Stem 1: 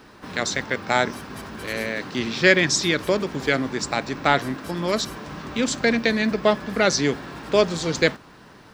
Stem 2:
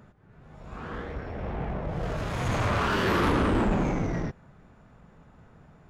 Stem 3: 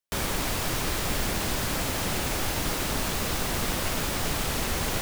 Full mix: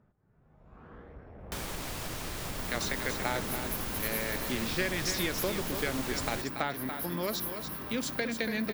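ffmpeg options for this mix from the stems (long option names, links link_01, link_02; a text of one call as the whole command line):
ffmpeg -i stem1.wav -i stem2.wav -i stem3.wav -filter_complex "[0:a]acompressor=threshold=-20dB:ratio=6,aexciter=amount=8.2:drive=9.8:freq=11000,adelay=2350,volume=-8dB,asplit=2[link_01][link_02];[link_02]volume=-8dB[link_03];[1:a]lowpass=frequency=1400:poles=1,volume=-13dB[link_04];[2:a]adelay=1400,volume=-4.5dB[link_05];[link_04][link_05]amix=inputs=2:normalize=0,acompressor=threshold=-34dB:ratio=6,volume=0dB[link_06];[link_03]aecho=0:1:285:1[link_07];[link_01][link_06][link_07]amix=inputs=3:normalize=0" out.wav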